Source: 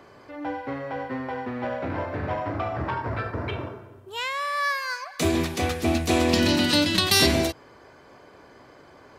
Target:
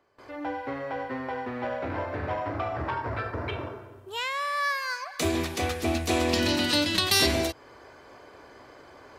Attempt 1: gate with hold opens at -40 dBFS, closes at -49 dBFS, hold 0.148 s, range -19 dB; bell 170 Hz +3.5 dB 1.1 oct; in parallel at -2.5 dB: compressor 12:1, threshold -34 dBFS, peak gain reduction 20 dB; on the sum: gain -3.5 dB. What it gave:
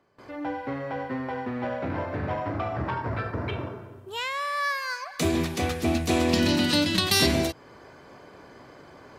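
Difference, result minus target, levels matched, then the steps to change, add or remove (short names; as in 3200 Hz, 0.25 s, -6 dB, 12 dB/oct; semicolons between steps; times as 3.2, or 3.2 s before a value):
125 Hz band +3.0 dB
change: bell 170 Hz -7 dB 1.1 oct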